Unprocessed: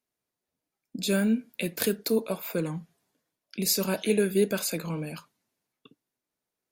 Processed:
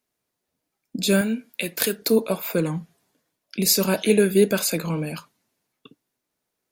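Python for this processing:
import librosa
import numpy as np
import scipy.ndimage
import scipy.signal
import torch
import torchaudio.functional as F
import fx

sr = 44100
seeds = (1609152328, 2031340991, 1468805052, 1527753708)

y = fx.low_shelf(x, sr, hz=450.0, db=-9.5, at=(1.21, 2.02))
y = y * librosa.db_to_amplitude(6.5)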